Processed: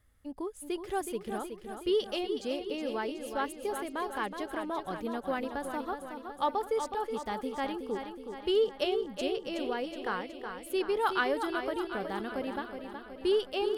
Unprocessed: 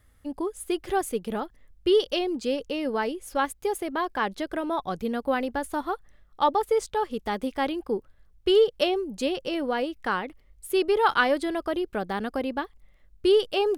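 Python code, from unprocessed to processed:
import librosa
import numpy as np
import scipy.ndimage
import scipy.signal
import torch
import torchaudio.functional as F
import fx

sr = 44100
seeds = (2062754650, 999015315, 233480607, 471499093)

y = fx.echo_feedback(x, sr, ms=370, feedback_pct=59, wet_db=-7.5)
y = y * 10.0 ** (-7.5 / 20.0)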